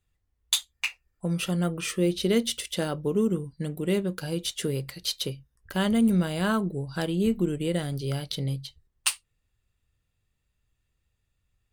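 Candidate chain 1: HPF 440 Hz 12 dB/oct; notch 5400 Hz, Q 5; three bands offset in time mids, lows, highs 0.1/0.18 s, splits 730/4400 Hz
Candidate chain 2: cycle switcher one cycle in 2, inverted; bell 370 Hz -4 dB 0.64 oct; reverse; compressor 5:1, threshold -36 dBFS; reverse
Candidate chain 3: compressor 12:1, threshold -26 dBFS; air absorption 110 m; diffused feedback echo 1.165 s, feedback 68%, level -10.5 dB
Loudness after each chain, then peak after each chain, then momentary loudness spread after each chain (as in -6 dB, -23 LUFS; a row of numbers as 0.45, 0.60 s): -33.5, -39.0, -33.0 LUFS; -8.0, -20.0, -15.5 dBFS; 10, 5, 14 LU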